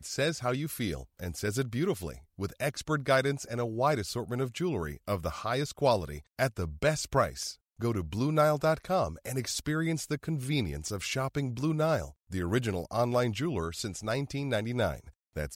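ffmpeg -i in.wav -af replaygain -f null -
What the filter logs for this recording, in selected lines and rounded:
track_gain = +10.8 dB
track_peak = 0.175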